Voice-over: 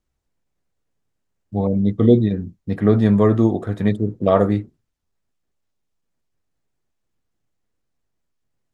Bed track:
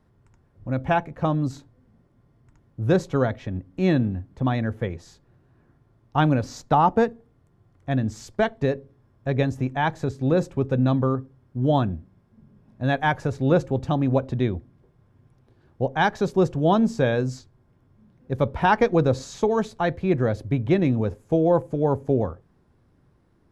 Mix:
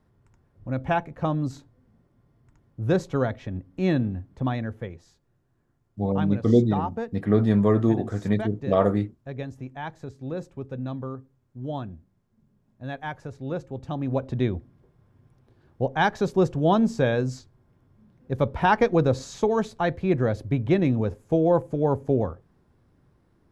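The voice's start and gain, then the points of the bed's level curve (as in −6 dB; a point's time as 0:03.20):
4.45 s, −5.0 dB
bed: 0:04.42 −2.5 dB
0:05.24 −11.5 dB
0:13.66 −11.5 dB
0:14.42 −1 dB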